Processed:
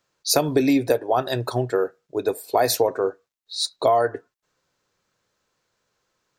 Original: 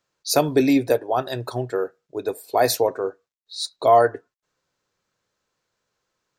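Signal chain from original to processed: compressor 10:1, threshold -18 dBFS, peak gain reduction 9 dB; gain +3.5 dB

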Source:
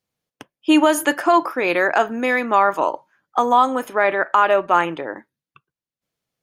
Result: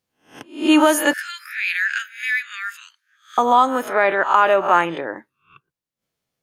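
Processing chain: spectral swells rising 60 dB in 0.38 s; 1.13–3.38 steep high-pass 1500 Hz 72 dB/oct

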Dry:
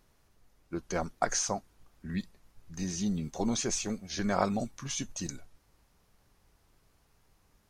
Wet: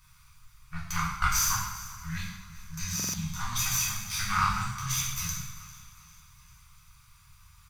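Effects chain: minimum comb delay 0.83 ms; in parallel at +2 dB: compressor, threshold -47 dBFS, peak gain reduction 23.5 dB; on the sum: elliptic band-stop 140–1100 Hz, stop band 70 dB; on a send: feedback echo 0.398 s, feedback 49%, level -19 dB; on the sum: two-slope reverb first 0.79 s, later 2.9 s, from -18 dB, DRR -5.5 dB; stuck buffer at 2.95, samples 2048, times 3

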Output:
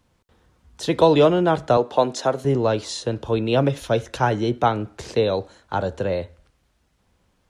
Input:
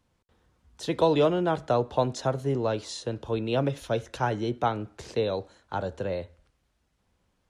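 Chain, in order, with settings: 1.77–2.45 HPF 240 Hz 12 dB/oct; gain +7 dB

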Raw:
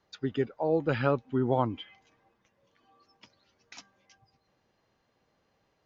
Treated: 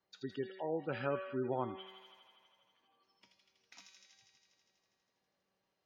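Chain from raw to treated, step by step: in parallel at -12 dB: bit-crush 7-bit; on the sum: low shelf 88 Hz -11.5 dB; resonator 190 Hz, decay 0.95 s, mix 80%; thin delay 81 ms, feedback 80%, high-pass 2200 Hz, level -4 dB; spectral gate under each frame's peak -30 dB strong; gain +1 dB

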